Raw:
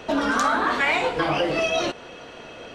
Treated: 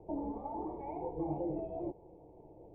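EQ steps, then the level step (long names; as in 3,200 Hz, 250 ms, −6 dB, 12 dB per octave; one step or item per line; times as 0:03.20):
formant resonators in series u
low-shelf EQ 280 Hz +11.5 dB
phaser with its sweep stopped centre 620 Hz, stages 4
−1.0 dB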